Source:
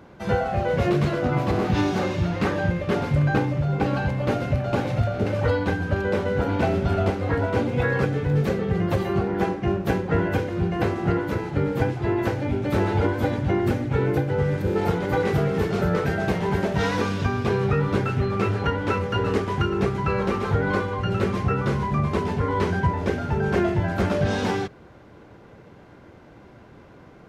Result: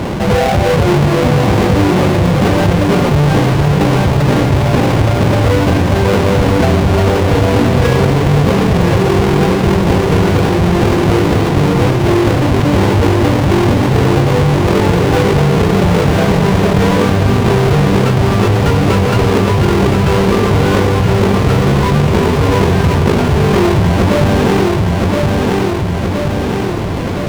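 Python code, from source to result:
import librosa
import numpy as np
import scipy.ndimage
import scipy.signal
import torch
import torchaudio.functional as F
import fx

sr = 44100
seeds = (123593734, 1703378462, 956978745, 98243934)

p1 = fx.halfwave_hold(x, sr)
p2 = fx.lowpass(p1, sr, hz=2800.0, slope=6)
p3 = fx.peak_eq(p2, sr, hz=1600.0, db=-2.5, octaves=0.55)
p4 = fx.notch(p3, sr, hz=1300.0, q=25.0)
p5 = p4 + fx.echo_feedback(p4, sr, ms=1020, feedback_pct=34, wet_db=-7, dry=0)
p6 = fx.env_flatten(p5, sr, amount_pct=70)
y = F.gain(torch.from_numpy(p6), 3.5).numpy()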